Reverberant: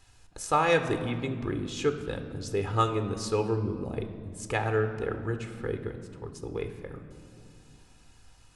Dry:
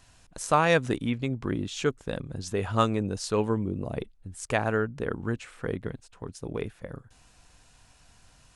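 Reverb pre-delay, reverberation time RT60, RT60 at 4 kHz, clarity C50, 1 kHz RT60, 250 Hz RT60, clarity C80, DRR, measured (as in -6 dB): 3 ms, 2.2 s, 1.3 s, 9.5 dB, 2.0 s, 3.1 s, 11.0 dB, 7.5 dB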